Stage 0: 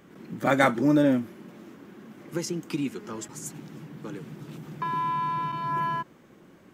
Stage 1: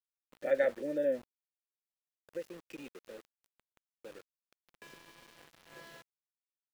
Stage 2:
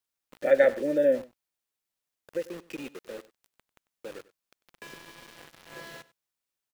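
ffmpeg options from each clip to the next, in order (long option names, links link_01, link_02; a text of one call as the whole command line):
ffmpeg -i in.wav -filter_complex "[0:a]adynamicequalizer=threshold=0.00398:dfrequency=2500:dqfactor=1.2:tfrequency=2500:tqfactor=1.2:attack=5:release=100:ratio=0.375:range=2.5:mode=cutabove:tftype=bell,asplit=3[link_01][link_02][link_03];[link_01]bandpass=frequency=530:width_type=q:width=8,volume=0dB[link_04];[link_02]bandpass=frequency=1840:width_type=q:width=8,volume=-6dB[link_05];[link_03]bandpass=frequency=2480:width_type=q:width=8,volume=-9dB[link_06];[link_04][link_05][link_06]amix=inputs=3:normalize=0,aeval=exprs='val(0)*gte(abs(val(0)),0.00335)':channel_layout=same" out.wav
ffmpeg -i in.wav -af "aecho=1:1:96:0.112,volume=8.5dB" out.wav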